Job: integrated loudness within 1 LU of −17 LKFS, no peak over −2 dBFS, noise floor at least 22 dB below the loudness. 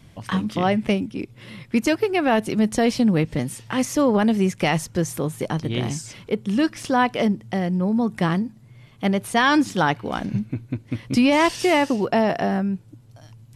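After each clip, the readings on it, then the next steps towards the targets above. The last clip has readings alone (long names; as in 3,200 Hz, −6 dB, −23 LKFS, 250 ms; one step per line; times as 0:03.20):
number of dropouts 1; longest dropout 4.1 ms; integrated loudness −22.0 LKFS; sample peak −8.0 dBFS; target loudness −17.0 LKFS
→ repair the gap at 0:06.83, 4.1 ms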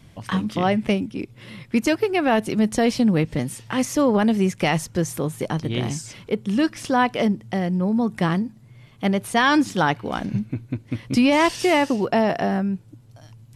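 number of dropouts 0; integrated loudness −22.0 LKFS; sample peak −8.0 dBFS; target loudness −17.0 LKFS
→ level +5 dB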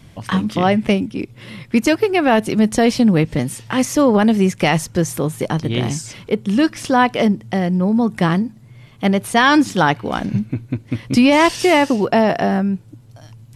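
integrated loudness −17.0 LKFS; sample peak −3.0 dBFS; background noise floor −44 dBFS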